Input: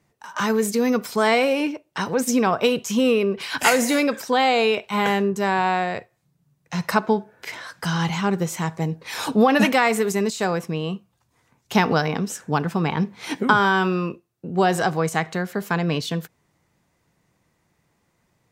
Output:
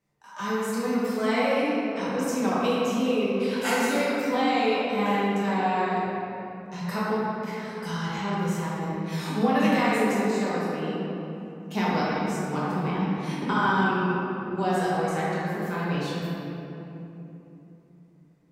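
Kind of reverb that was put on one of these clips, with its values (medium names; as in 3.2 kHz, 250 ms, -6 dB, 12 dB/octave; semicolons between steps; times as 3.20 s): simulated room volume 160 m³, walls hard, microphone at 1.2 m; trim -14.5 dB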